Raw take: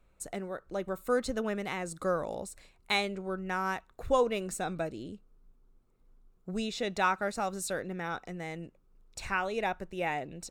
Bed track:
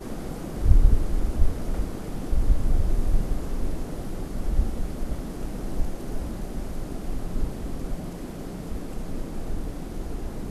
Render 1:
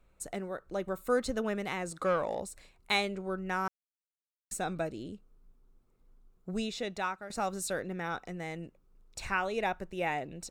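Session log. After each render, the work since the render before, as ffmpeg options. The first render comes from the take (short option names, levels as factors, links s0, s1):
-filter_complex "[0:a]asettb=1/sr,asplit=3[s0][s1][s2];[s0]atrim=end=1.914[s3];[s1]atrim=start=1.91:end=2.4,asetpts=PTS-STARTPTS,afade=t=in:d=0.004:c=qsin,afade=t=out:st=0.486:d=0.004:c=qsin,asplit=2[s4][s5];[s5]highpass=f=720:p=1,volume=3.98,asoftclip=type=tanh:threshold=0.1[s6];[s4][s6]amix=inputs=2:normalize=0,lowpass=f=2800:p=1,volume=0.501[s7];[s2]atrim=start=2.396[s8];[s3][s7]acrossfade=d=0.004:c1=hsin:c2=qsin[s9];[s9][s8]acrossfade=d=0.004:c1=qsin:c2=hsin,asplit=4[s10][s11][s12][s13];[s10]atrim=end=3.68,asetpts=PTS-STARTPTS,afade=t=out:st=3.676:d=0.004:c=hsin[s14];[s11]atrim=start=3.68:end=4.51,asetpts=PTS-STARTPTS,volume=0[s15];[s12]atrim=start=4.51:end=7.3,asetpts=PTS-STARTPTS,afade=t=in:d=0.004:c=hsin,afade=t=out:st=2.07:d=0.72:silence=0.199526[s16];[s13]atrim=start=7.3,asetpts=PTS-STARTPTS,afade=t=in:d=0.004:c=hsin:silence=0.199526[s17];[s14][s15][s16][s17]concat=n=4:v=0:a=1"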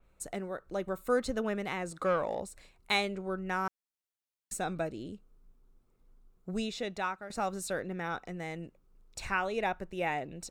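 -af "adynamicequalizer=threshold=0.00282:dfrequency=3800:dqfactor=0.7:tfrequency=3800:tqfactor=0.7:attack=5:release=100:ratio=0.375:range=2:mode=cutabove:tftype=highshelf"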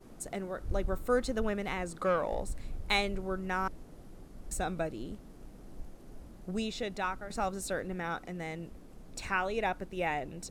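-filter_complex "[1:a]volume=0.119[s0];[0:a][s0]amix=inputs=2:normalize=0"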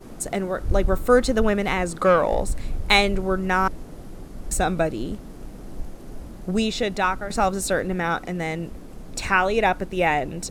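-af "volume=3.98"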